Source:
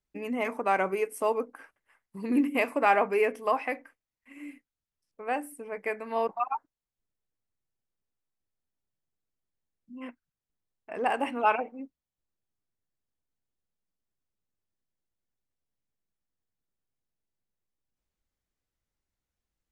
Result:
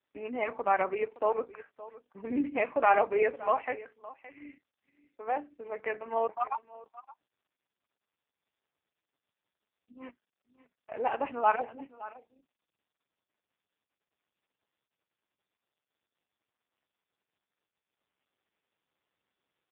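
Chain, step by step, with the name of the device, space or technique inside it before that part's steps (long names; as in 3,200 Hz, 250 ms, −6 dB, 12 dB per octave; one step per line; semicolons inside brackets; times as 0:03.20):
0:02.77–0:03.28: dynamic equaliser 550 Hz, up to +4 dB, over −39 dBFS, Q 5.2
satellite phone (band-pass filter 340–3,400 Hz; single-tap delay 568 ms −17.5 dB; AMR narrowband 4.75 kbit/s 8,000 Hz)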